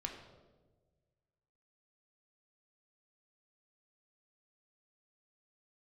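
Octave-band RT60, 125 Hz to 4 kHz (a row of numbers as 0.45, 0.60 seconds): 2.1, 1.6, 1.6, 1.1, 0.80, 0.80 seconds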